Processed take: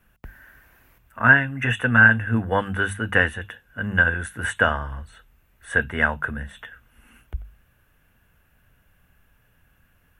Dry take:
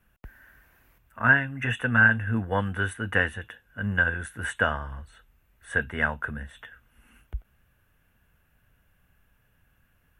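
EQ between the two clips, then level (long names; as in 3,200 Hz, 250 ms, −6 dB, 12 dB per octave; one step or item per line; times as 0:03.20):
mains-hum notches 50/100/150/200 Hz
+5.0 dB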